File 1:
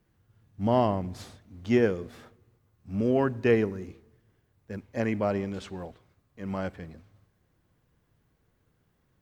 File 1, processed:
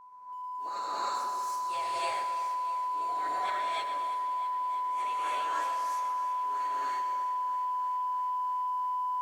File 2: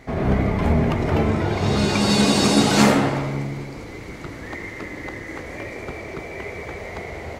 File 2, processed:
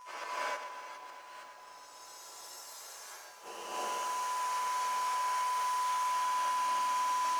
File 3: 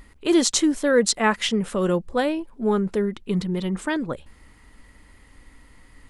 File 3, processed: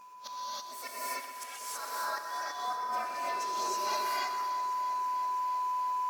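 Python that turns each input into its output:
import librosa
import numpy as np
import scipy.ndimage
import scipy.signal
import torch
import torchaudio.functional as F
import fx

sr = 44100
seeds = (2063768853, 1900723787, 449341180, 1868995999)

p1 = fx.partial_stretch(x, sr, pct=113)
p2 = fx.spec_gate(p1, sr, threshold_db=-15, keep='weak')
p3 = scipy.signal.sosfilt(scipy.signal.butter(2, 770.0, 'highpass', fs=sr, output='sos'), p2)
p4 = fx.high_shelf_res(p3, sr, hz=4200.0, db=9.0, q=1.5)
p5 = fx.hpss(p4, sr, part='percussive', gain_db=-3)
p6 = fx.tilt_eq(p5, sr, slope=-3.0)
p7 = 10.0 ** (-19.5 / 20.0) * np.tanh(p6 / 10.0 ** (-19.5 / 20.0))
p8 = p6 + (p7 * 10.0 ** (-6.0 / 20.0))
p9 = p8 + 10.0 ** (-47.0 / 20.0) * np.sin(2.0 * np.pi * 1000.0 * np.arange(len(p8)) / sr)
p10 = fx.gate_flip(p9, sr, shuts_db=-27.0, range_db=-29)
p11 = p10 + fx.echo_feedback(p10, sr, ms=125, feedback_pct=56, wet_db=-10.5, dry=0)
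p12 = fx.rev_gated(p11, sr, seeds[0], gate_ms=350, shape='rising', drr_db=-8.0)
p13 = fx.echo_crushed(p12, sr, ms=325, feedback_pct=80, bits=9, wet_db=-14.5)
y = p13 * 10.0 ** (-3.0 / 20.0)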